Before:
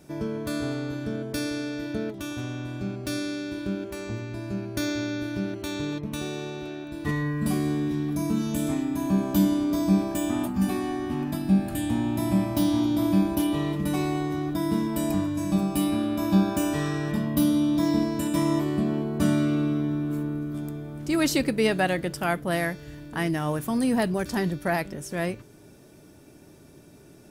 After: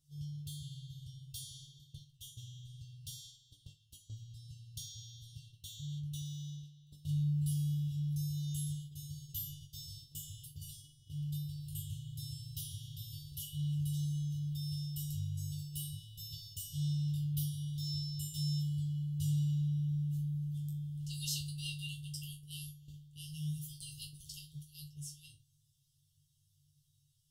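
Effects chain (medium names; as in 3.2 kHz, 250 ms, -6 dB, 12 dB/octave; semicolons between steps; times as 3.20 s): FFT band-reject 160–2700 Hz; gate -42 dBFS, range -9 dB; chord resonator G2 fifth, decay 0.25 s; trim +3 dB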